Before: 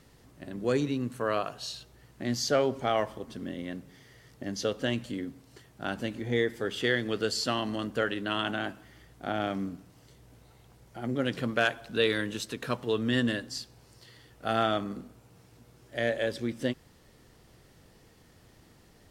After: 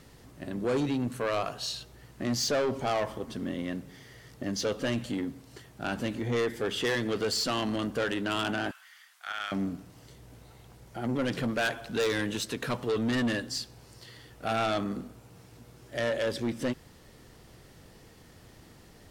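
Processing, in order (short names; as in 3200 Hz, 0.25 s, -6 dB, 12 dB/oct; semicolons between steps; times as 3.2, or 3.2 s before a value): 8.71–9.52 HPF 1200 Hz 24 dB/oct; soft clip -28 dBFS, distortion -8 dB; gain +4.5 dB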